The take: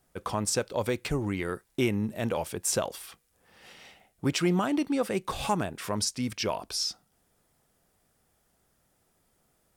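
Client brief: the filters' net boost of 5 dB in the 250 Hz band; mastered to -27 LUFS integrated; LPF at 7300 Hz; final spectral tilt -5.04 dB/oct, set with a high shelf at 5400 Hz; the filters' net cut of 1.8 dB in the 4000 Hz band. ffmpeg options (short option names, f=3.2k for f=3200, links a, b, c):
-af "lowpass=7.3k,equalizer=f=250:t=o:g=6.5,equalizer=f=4k:t=o:g=-5.5,highshelf=f=5.4k:g=6,volume=0.5dB"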